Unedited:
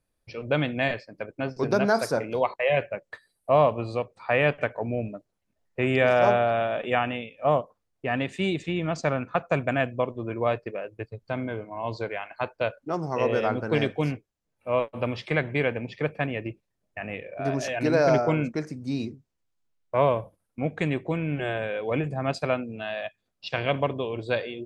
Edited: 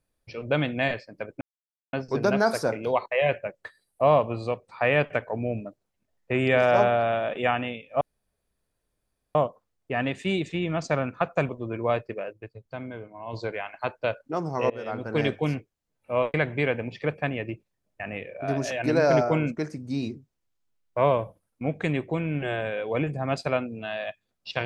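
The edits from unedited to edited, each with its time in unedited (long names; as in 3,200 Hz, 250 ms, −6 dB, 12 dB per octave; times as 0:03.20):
0:01.41: splice in silence 0.52 s
0:07.49: splice in room tone 1.34 s
0:09.63–0:10.06: remove
0:10.90–0:11.90: clip gain −6 dB
0:13.27–0:13.83: fade in, from −18 dB
0:14.91–0:15.31: remove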